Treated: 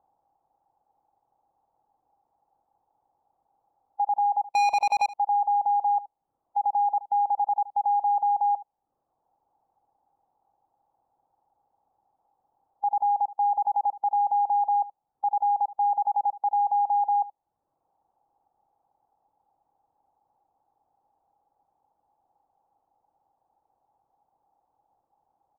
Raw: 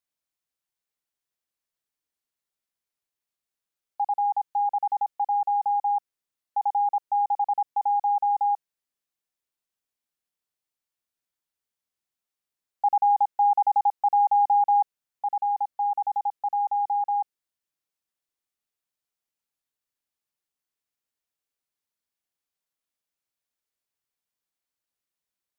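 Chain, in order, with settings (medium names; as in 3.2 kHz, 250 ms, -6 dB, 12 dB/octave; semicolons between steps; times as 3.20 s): spectral levelling over time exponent 0.6; reverb removal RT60 0.75 s; low-pass 1 kHz 24 dB/octave; 4.52–5.06 s: waveshaping leveller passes 3; peak limiter -23.5 dBFS, peak gain reduction 8 dB; delay 75 ms -17.5 dB; trim +4.5 dB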